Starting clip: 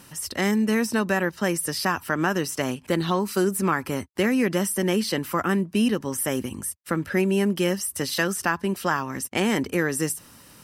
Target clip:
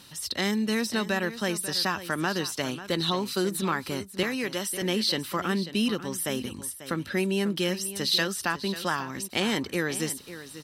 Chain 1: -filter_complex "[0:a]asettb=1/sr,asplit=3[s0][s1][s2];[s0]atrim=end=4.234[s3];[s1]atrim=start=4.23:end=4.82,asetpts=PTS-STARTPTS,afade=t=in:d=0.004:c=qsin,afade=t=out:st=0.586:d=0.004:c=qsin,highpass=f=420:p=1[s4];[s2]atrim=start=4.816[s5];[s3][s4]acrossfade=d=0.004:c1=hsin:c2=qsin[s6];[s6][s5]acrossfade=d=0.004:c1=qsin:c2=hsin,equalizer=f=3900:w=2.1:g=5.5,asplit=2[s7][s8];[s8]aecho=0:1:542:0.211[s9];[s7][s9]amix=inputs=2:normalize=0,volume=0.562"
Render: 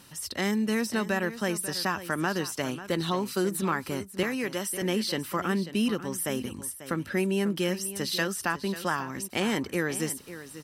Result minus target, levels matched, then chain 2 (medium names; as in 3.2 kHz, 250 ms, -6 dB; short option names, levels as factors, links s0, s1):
4 kHz band -4.5 dB
-filter_complex "[0:a]asettb=1/sr,asplit=3[s0][s1][s2];[s0]atrim=end=4.234[s3];[s1]atrim=start=4.23:end=4.82,asetpts=PTS-STARTPTS,afade=t=in:d=0.004:c=qsin,afade=t=out:st=0.586:d=0.004:c=qsin,highpass=f=420:p=1[s4];[s2]atrim=start=4.816[s5];[s3][s4]acrossfade=d=0.004:c1=hsin:c2=qsin[s6];[s6][s5]acrossfade=d=0.004:c1=qsin:c2=hsin,equalizer=f=3900:w=2.1:g=14.5,asplit=2[s7][s8];[s8]aecho=0:1:542:0.211[s9];[s7][s9]amix=inputs=2:normalize=0,volume=0.562"